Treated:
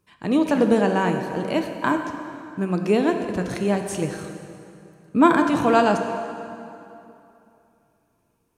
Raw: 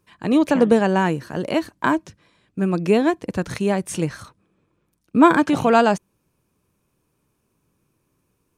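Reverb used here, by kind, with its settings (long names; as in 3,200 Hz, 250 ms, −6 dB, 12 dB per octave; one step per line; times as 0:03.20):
dense smooth reverb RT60 2.8 s, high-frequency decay 0.75×, DRR 5 dB
level −3 dB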